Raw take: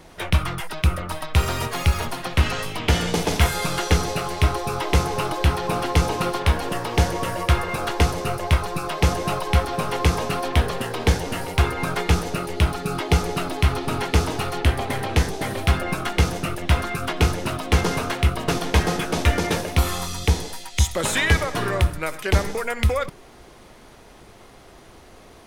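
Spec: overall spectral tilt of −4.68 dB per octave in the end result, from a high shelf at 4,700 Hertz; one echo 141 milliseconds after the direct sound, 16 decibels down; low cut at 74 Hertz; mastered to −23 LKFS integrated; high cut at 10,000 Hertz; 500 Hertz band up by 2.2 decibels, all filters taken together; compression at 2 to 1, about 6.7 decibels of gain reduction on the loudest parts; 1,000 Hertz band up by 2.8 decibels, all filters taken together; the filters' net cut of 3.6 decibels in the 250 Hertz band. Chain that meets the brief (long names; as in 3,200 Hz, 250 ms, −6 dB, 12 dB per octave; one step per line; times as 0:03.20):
high-pass filter 74 Hz
low-pass filter 10,000 Hz
parametric band 250 Hz −7.5 dB
parametric band 500 Hz +4 dB
parametric band 1,000 Hz +3 dB
high-shelf EQ 4,700 Hz −4.5 dB
downward compressor 2 to 1, threshold −27 dBFS
single-tap delay 141 ms −16 dB
level +5 dB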